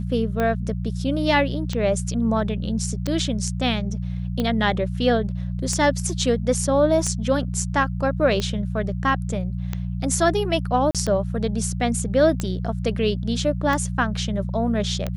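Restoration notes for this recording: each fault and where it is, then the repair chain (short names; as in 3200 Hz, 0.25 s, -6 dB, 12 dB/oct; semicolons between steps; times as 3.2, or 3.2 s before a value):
hum 60 Hz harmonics 3 -27 dBFS
tick 45 rpm -12 dBFS
10.91–10.95 gap 37 ms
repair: de-click; de-hum 60 Hz, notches 3; interpolate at 10.91, 37 ms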